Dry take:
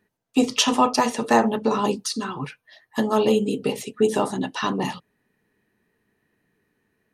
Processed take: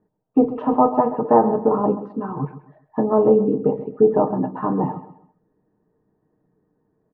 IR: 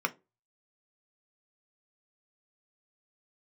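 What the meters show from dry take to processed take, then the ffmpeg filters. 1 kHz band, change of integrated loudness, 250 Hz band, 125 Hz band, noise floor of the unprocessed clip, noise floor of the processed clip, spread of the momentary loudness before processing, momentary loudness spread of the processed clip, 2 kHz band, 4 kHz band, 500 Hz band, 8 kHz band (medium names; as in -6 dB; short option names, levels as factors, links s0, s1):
+2.0 dB, +3.0 dB, +3.0 dB, +5.0 dB, -75 dBFS, -70 dBFS, 11 LU, 12 LU, under -10 dB, under -35 dB, +5.5 dB, under -40 dB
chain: -filter_complex "[0:a]lowpass=f=1000:w=0.5412,lowpass=f=1000:w=1.3066,aecho=1:1:6.5:0.4,asplit=2[s0][s1];[s1]aecho=0:1:132|264|396:0.2|0.0619|0.0192[s2];[s0][s2]amix=inputs=2:normalize=0,volume=1.58"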